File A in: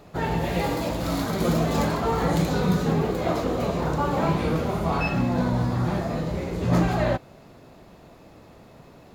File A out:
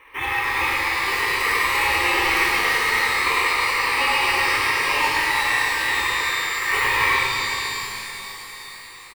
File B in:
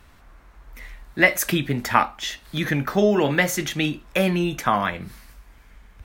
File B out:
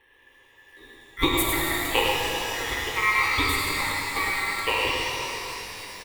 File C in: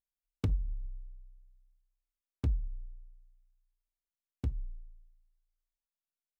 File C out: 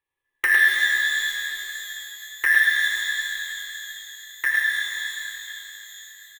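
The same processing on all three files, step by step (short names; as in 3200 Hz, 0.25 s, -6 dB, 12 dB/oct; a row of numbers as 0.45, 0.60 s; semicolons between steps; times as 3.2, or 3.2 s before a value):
Wiener smoothing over 9 samples; high shelf 2000 Hz +6.5 dB; ring modulator 1700 Hz; in parallel at -11.5 dB: sample-and-hold 12×; on the sum: fixed phaser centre 990 Hz, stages 8; on a send: echo 0.105 s -5.5 dB; on the sum: shimmer reverb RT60 3.8 s, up +12 st, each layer -8 dB, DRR -1.5 dB; normalise peaks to -6 dBFS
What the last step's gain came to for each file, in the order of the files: +3.5, -4.0, +16.0 dB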